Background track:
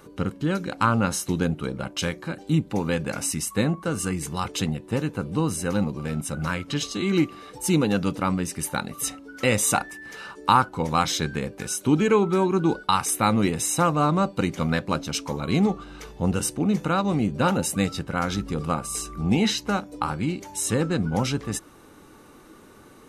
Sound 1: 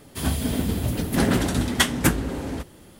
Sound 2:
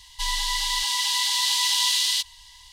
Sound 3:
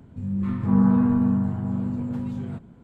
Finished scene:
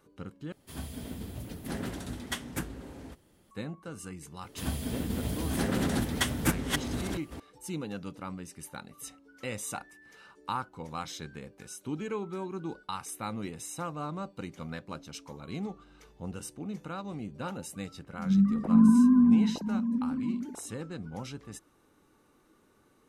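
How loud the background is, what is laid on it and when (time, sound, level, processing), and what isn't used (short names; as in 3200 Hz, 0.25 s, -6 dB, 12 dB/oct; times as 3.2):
background track -15.5 dB
0.52 replace with 1 -15.5 dB
4.41 add 1 -9.5 dB + reverse delay 0.691 s, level -2 dB
18.02 add 3 -1 dB + sine-wave speech
not used: 2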